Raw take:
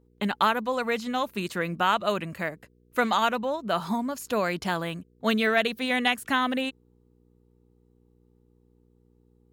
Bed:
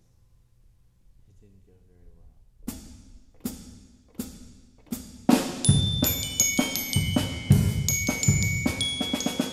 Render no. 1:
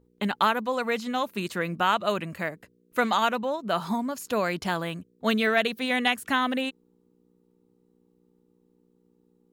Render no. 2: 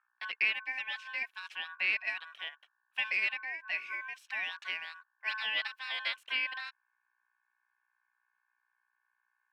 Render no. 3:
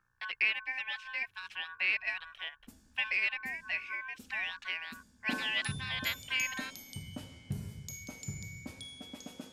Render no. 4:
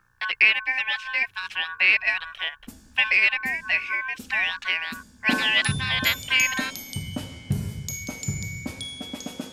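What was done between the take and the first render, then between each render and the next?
de-hum 60 Hz, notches 2
ring modulator 1300 Hz; band-pass 2500 Hz, Q 2.9
add bed -19.5 dB
gain +12 dB

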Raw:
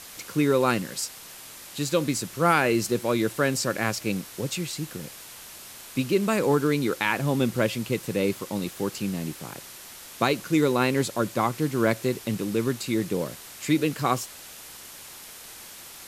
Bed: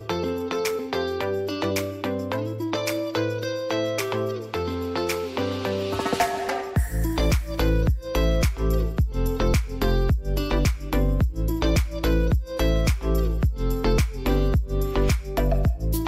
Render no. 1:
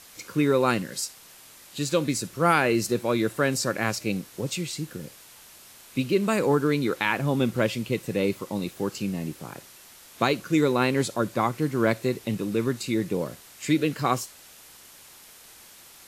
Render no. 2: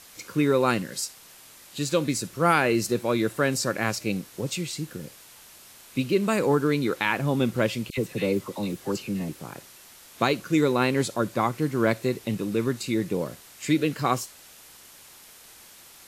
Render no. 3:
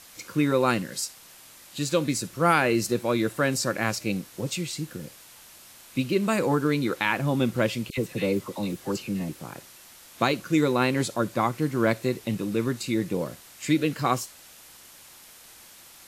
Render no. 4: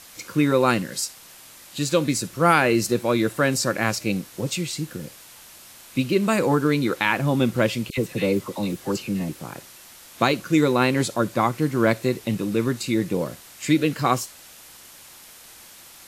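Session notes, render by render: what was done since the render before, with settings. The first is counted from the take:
noise print and reduce 6 dB
7.9–9.29 dispersion lows, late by 74 ms, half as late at 1400 Hz
notch 420 Hz, Q 12
gain +3.5 dB

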